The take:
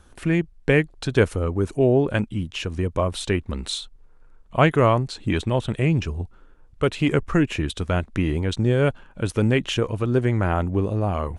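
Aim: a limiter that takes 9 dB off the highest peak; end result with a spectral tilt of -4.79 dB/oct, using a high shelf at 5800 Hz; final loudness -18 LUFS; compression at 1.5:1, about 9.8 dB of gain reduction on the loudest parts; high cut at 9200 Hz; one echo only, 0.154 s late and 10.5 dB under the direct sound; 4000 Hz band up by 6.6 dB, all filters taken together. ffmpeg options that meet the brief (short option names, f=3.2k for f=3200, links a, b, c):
-af "lowpass=9.2k,equalizer=f=4k:t=o:g=6.5,highshelf=f=5.8k:g=6,acompressor=threshold=-40dB:ratio=1.5,alimiter=limit=-22dB:level=0:latency=1,aecho=1:1:154:0.299,volume=14.5dB"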